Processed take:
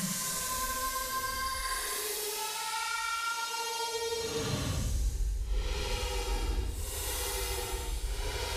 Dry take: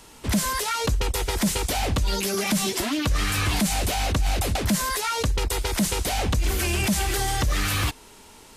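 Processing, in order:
brickwall limiter −19 dBFS, peak gain reduction 3.5 dB
extreme stretch with random phases 9.4×, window 0.10 s, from 0:04.76
delay with a high-pass on its return 83 ms, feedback 62%, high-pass 3,500 Hz, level −4 dB
level −7 dB

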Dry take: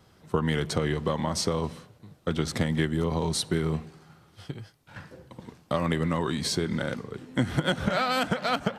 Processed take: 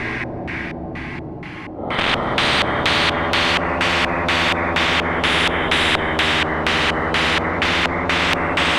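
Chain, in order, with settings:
thirty-one-band graphic EQ 160 Hz −11 dB, 315 Hz +6 dB, 500 Hz −9 dB, 1,250 Hz −5 dB, 2,000 Hz +8 dB, 10,000 Hz +10 dB
extreme stretch with random phases 15×, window 0.10 s, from 0:05.55
in parallel at −5 dB: bit-depth reduction 6 bits, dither none
on the sum: auto-filter low-pass square 2.1 Hz 610–2,200 Hz
every bin compressed towards the loudest bin 10 to 1
level +4.5 dB

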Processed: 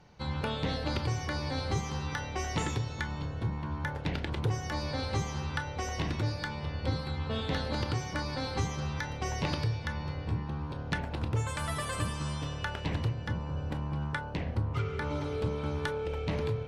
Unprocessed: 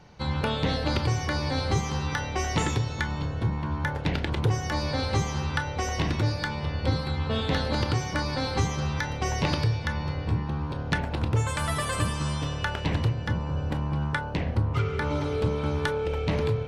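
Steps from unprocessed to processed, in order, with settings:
level −5.5 dB
MP3 112 kbit/s 32,000 Hz

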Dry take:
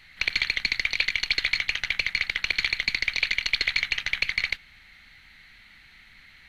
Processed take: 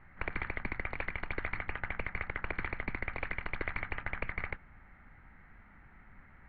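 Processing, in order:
low-pass filter 1,300 Hz 24 dB per octave
level +4 dB

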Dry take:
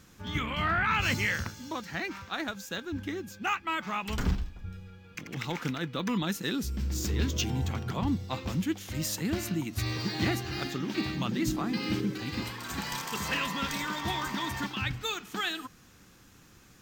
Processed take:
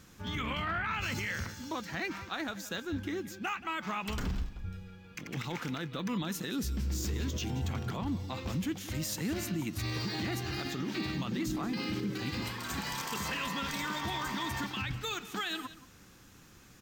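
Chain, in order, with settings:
brickwall limiter −26 dBFS, peak gain reduction 11 dB
single-tap delay 178 ms −16 dB

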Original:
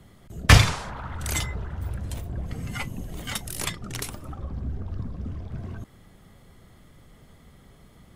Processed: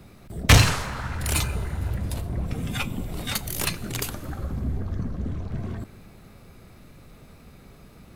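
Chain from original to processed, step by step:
soft clipping −11 dBFS, distortion −11 dB
four-comb reverb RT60 2.3 s, combs from 29 ms, DRR 17.5 dB
formants moved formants +3 semitones
level +3.5 dB

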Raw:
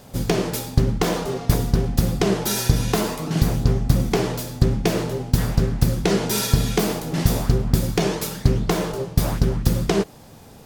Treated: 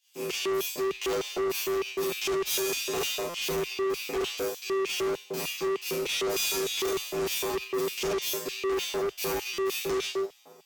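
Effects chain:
loose part that buzzes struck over −21 dBFS, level −24 dBFS
four-comb reverb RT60 0.52 s, combs from 28 ms, DRR −4 dB
automatic gain control
low-shelf EQ 140 Hz −11.5 dB
tuned comb filter 55 Hz, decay 0.4 s, harmonics odd, mix 100%
auto-filter high-pass square 3.3 Hz 370–2,900 Hz
EQ curve with evenly spaced ripples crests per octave 0.75, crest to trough 6 dB
brickwall limiter −17.5 dBFS, peak gain reduction 10.5 dB
hard clipping −29.5 dBFS, distortion −7 dB
transient designer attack +1 dB, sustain −4 dB
buffer that repeats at 0:03.29/0:09.53, samples 256, times 8
multiband upward and downward expander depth 40%
level +3 dB

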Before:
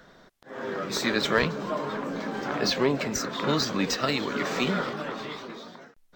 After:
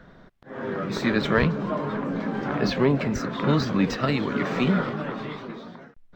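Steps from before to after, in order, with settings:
bass and treble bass +9 dB, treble −13 dB
level +1 dB

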